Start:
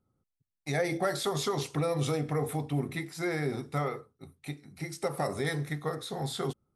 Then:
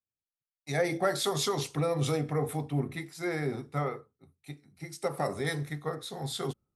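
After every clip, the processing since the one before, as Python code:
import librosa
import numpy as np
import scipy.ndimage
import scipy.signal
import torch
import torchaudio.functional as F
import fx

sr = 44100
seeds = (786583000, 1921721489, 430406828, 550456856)

y = fx.band_widen(x, sr, depth_pct=70)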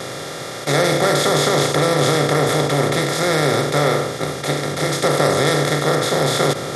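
y = fx.bin_compress(x, sr, power=0.2)
y = fx.vibrato(y, sr, rate_hz=0.34, depth_cents=8.5)
y = fx.dmg_buzz(y, sr, base_hz=400.0, harmonics=15, level_db=-46.0, tilt_db=-1, odd_only=False)
y = F.gain(torch.from_numpy(y), 5.0).numpy()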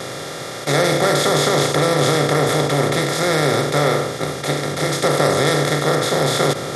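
y = x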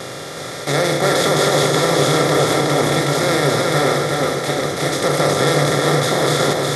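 y = fx.echo_feedback(x, sr, ms=367, feedback_pct=55, wet_db=-3.0)
y = F.gain(torch.from_numpy(y), -1.0).numpy()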